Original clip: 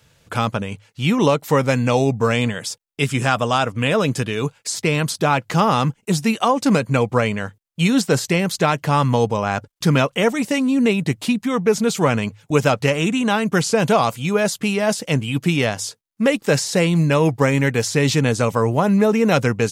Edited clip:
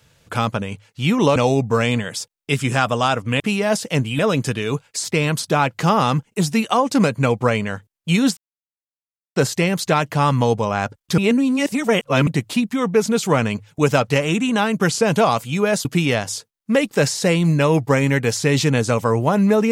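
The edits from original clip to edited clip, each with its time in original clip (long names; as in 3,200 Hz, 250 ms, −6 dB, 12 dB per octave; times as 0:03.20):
0:01.36–0:01.86: remove
0:08.08: splice in silence 0.99 s
0:09.90–0:10.99: reverse
0:14.57–0:15.36: move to 0:03.90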